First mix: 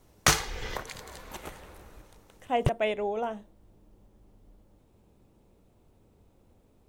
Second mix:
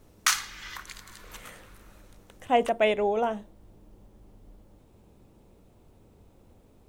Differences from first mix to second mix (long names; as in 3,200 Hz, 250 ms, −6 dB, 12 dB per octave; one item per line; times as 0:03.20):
speech +5.0 dB
background: add Chebyshev high-pass filter 1,200 Hz, order 3